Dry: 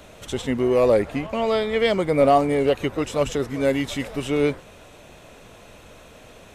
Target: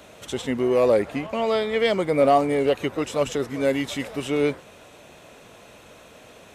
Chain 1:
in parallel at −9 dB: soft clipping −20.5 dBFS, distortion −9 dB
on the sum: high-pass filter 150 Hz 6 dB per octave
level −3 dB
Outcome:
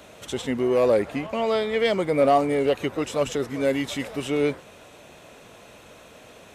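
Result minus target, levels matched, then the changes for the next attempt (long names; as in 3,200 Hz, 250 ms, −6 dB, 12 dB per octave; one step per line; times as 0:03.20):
soft clipping: distortion +12 dB
change: soft clipping −10 dBFS, distortion −20 dB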